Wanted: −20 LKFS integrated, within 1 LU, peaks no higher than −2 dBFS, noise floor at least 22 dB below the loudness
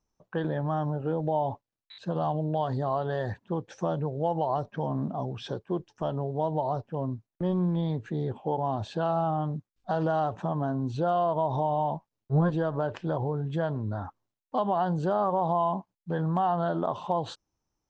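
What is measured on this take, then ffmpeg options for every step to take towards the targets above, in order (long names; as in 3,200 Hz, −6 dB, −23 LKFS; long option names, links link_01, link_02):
integrated loudness −29.5 LKFS; sample peak −16.0 dBFS; target loudness −20.0 LKFS
→ -af "volume=9.5dB"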